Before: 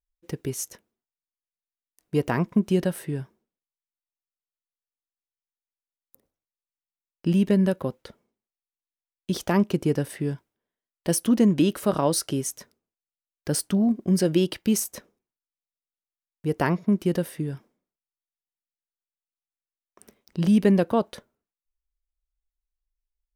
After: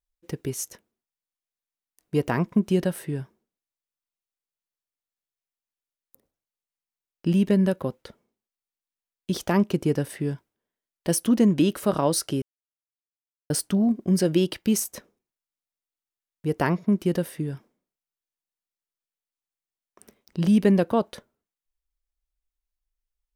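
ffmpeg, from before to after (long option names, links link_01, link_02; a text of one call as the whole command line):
ffmpeg -i in.wav -filter_complex "[0:a]asplit=3[link_01][link_02][link_03];[link_01]atrim=end=12.42,asetpts=PTS-STARTPTS,afade=type=out:start_time=12.416:duration=0.004:curve=hsin[link_04];[link_02]atrim=start=12.42:end=13.5,asetpts=PTS-STARTPTS,volume=0[link_05];[link_03]atrim=start=13.5,asetpts=PTS-STARTPTS,afade=type=in:duration=0.004:curve=hsin[link_06];[link_04][link_05][link_06]concat=n=3:v=0:a=1" out.wav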